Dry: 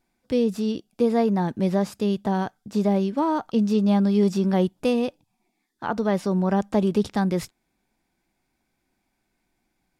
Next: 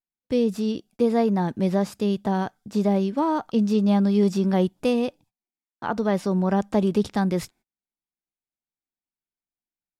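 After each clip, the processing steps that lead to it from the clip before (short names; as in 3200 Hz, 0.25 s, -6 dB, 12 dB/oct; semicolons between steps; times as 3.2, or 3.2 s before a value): gate -51 dBFS, range -29 dB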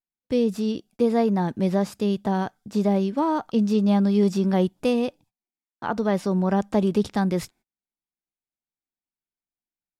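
nothing audible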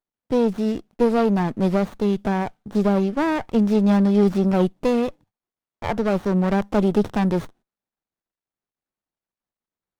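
running maximum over 17 samples; gain +3.5 dB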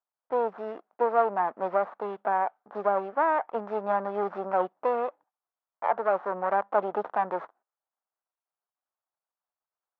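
Butterworth band-pass 950 Hz, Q 1.1; gain +2.5 dB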